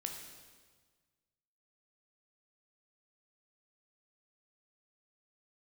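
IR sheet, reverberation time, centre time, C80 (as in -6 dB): 1.5 s, 42 ms, 6.5 dB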